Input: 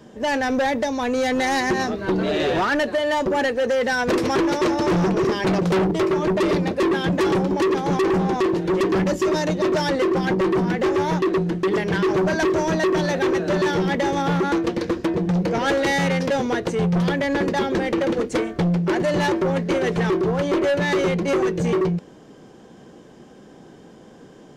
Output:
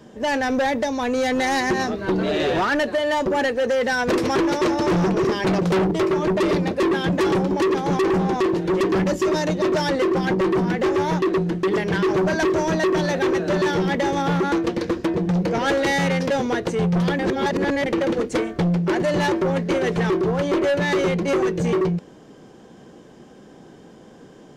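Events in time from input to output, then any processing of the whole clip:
0:17.19–0:17.86: reverse

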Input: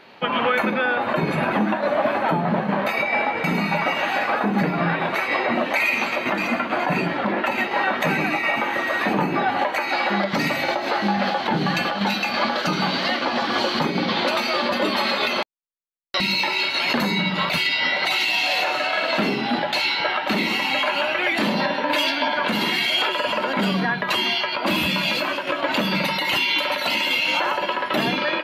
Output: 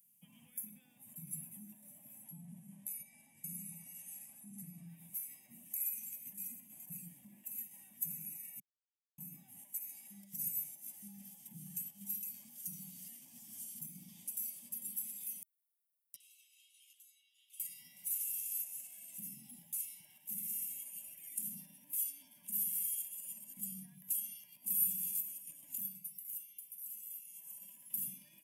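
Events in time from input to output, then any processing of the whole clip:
0:02.24–0:04.87: Butterworth low-pass 12,000 Hz 96 dB per octave
0:08.60–0:09.18: silence
0:16.16–0:17.60: four-pole ladder band-pass 3,400 Hz, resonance 75%
0:25.67–0:27.66: duck −12 dB, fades 0.34 s
whole clip: brickwall limiter −13.5 dBFS; elliptic band-stop filter 170–9,300 Hz, stop band 40 dB; first difference; level +8.5 dB

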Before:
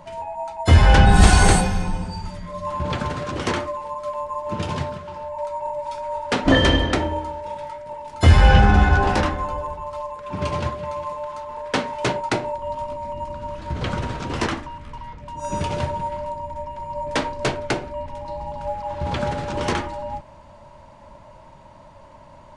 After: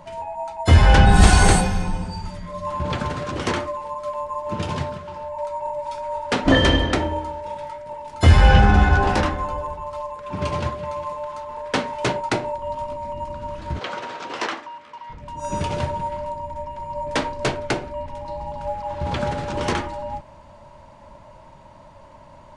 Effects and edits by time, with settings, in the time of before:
0:13.79–0:15.10: band-pass filter 470–6,400 Hz

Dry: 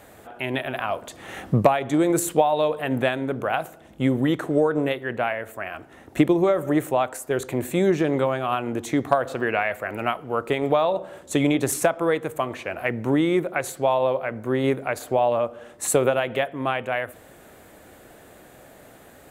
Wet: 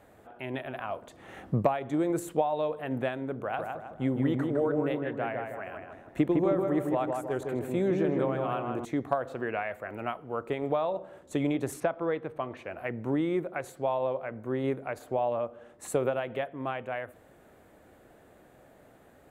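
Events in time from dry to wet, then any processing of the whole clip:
0:03.43–0:08.85: feedback echo with a low-pass in the loop 158 ms, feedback 49%, low-pass 1,900 Hz, level −3 dB
0:11.80–0:12.57: Savitzky-Golay smoothing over 15 samples
whole clip: high-shelf EQ 2,400 Hz −9.5 dB; level −7.5 dB

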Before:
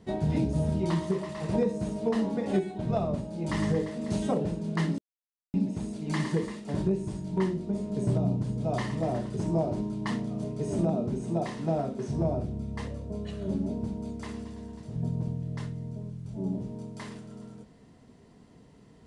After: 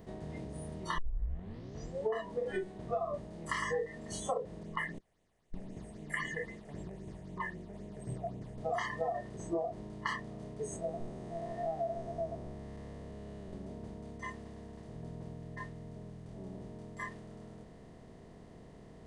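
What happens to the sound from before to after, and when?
0:00.98: tape start 1.15 s
0:04.63–0:08.58: all-pass phaser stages 6, 3.8 Hz, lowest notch 270–1,400 Hz
0:10.76–0:13.53: spectrum smeared in time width 350 ms
whole clip: compressor on every frequency bin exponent 0.4; noise reduction from a noise print of the clip's start 25 dB; downward compressor 6 to 1, threshold −34 dBFS; level +3 dB

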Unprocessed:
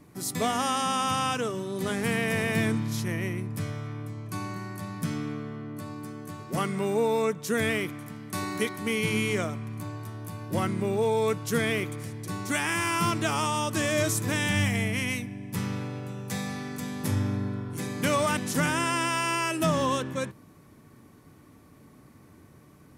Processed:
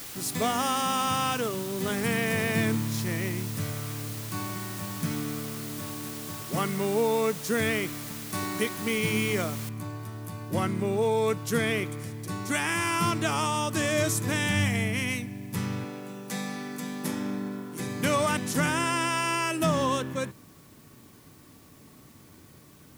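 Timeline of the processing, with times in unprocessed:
0:09.69: noise floor change −41 dB −59 dB
0:15.84–0:17.80: Butterworth high-pass 160 Hz

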